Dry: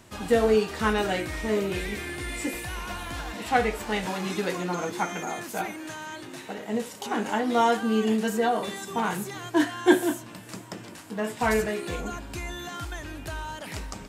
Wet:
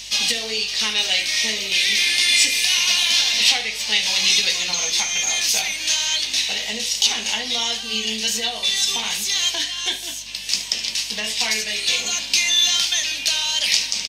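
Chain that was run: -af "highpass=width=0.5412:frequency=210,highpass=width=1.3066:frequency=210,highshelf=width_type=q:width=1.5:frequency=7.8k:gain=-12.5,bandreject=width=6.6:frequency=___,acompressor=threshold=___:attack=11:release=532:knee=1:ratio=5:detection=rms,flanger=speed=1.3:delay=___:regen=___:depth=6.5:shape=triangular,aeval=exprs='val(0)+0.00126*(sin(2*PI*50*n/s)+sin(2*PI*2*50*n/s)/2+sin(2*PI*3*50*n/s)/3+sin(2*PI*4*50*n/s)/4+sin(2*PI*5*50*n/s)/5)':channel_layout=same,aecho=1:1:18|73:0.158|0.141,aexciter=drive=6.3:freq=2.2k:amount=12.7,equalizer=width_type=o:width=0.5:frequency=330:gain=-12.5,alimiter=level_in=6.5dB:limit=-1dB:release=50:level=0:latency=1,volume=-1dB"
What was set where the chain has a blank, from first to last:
7.4k, -29dB, 7.8, -66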